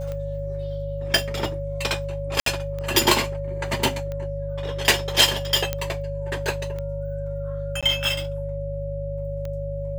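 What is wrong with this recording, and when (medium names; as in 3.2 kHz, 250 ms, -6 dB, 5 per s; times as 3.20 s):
hum 50 Hz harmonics 3 -31 dBFS
tick -20 dBFS
whine 560 Hz -30 dBFS
2.40–2.46 s: dropout 63 ms
5.73 s: pop -9 dBFS
7.81–7.83 s: dropout 16 ms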